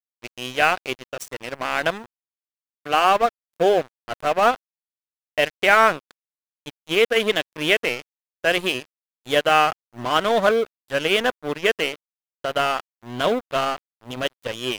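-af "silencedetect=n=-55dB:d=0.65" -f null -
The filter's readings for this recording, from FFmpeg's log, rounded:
silence_start: 2.06
silence_end: 2.85 | silence_duration: 0.80
silence_start: 4.56
silence_end: 5.38 | silence_duration: 0.82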